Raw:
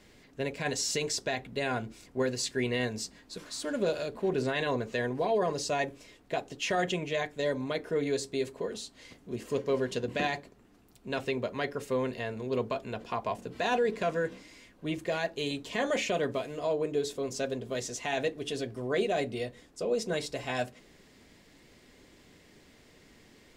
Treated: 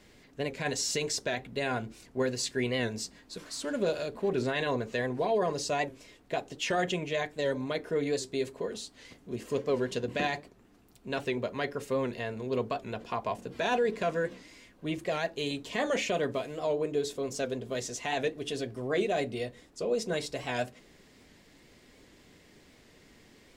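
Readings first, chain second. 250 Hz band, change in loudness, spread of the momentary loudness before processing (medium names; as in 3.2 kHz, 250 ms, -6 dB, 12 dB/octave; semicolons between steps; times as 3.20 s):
0.0 dB, 0.0 dB, 8 LU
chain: warped record 78 rpm, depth 100 cents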